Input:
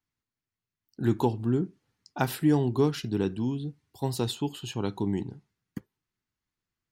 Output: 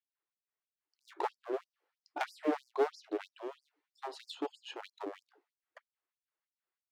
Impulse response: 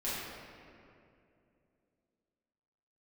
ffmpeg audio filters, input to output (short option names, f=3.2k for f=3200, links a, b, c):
-af "adynamicsmooth=sensitivity=0.5:basefreq=2.7k,aeval=exprs='clip(val(0),-1,0.0299)':c=same,afftfilt=real='re*gte(b*sr/1024,290*pow(4800/290,0.5+0.5*sin(2*PI*3.1*pts/sr)))':imag='im*gte(b*sr/1024,290*pow(4800/290,0.5+0.5*sin(2*PI*3.1*pts/sr)))':win_size=1024:overlap=0.75"